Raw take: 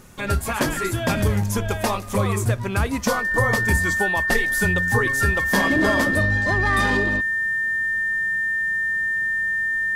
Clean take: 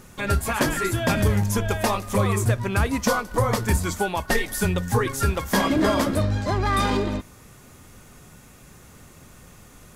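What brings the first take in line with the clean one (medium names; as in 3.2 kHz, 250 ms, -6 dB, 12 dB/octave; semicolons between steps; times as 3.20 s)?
band-stop 1.8 kHz, Q 30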